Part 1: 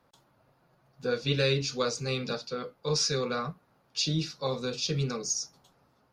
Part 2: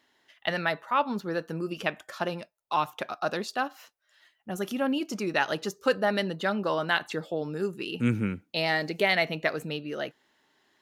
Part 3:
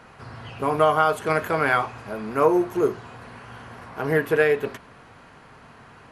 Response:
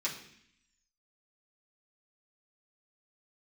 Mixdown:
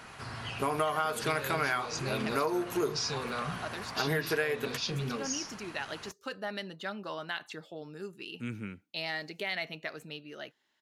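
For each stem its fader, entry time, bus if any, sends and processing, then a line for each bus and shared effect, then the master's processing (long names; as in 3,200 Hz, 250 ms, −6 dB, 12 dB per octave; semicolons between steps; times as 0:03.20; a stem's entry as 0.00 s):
−1.0 dB, 0.00 s, bus A, no send, low-pass filter 2,000 Hz 6 dB per octave; level that may fall only so fast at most 110 dB per second
−12.0 dB, 0.40 s, bus A, no send, no processing
−3.0 dB, 0.00 s, no bus, no send, no processing
bus A: 0.0 dB, high-shelf EQ 6,400 Hz −9.5 dB; brickwall limiter −27.5 dBFS, peak gain reduction 10 dB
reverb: not used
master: high-shelf EQ 2,100 Hz +11 dB; notch filter 500 Hz, Q 14; downward compressor 6 to 1, threshold −27 dBFS, peak gain reduction 12 dB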